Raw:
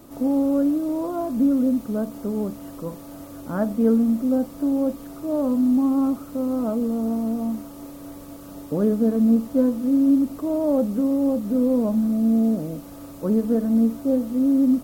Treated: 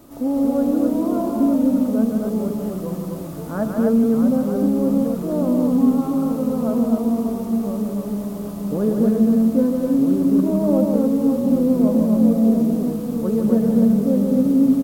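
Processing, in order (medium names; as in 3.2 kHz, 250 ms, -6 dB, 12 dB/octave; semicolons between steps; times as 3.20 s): loudspeakers at several distances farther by 53 m -5 dB, 87 m -3 dB; ever faster or slower copies 203 ms, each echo -2 st, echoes 3, each echo -6 dB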